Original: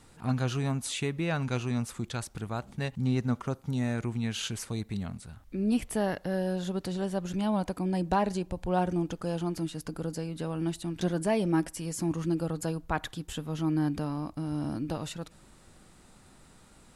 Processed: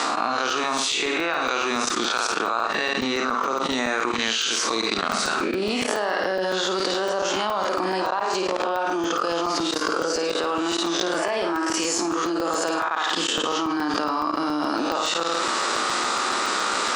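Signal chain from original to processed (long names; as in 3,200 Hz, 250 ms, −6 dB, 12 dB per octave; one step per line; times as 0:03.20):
peak hold with a rise ahead of every peak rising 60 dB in 0.50 s
low-pass filter 6,100 Hz 24 dB per octave
parametric band 1,200 Hz +10.5 dB 0.68 octaves
transient designer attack +4 dB, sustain −3 dB
high-pass filter 320 Hz 24 dB per octave
high-shelf EQ 3,300 Hz +10 dB
on a send: flutter between parallel walls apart 9.1 metres, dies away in 0.48 s
on the sum: output level in coarse steps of 19 dB
regular buffer underruns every 0.14 s, samples 128, zero, from 0:00.50
envelope flattener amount 100%
level −6 dB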